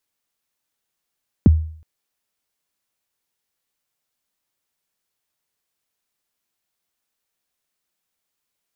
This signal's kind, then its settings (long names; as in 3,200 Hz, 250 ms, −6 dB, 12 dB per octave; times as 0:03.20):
synth kick length 0.37 s, from 320 Hz, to 79 Hz, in 20 ms, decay 0.53 s, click off, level −4.5 dB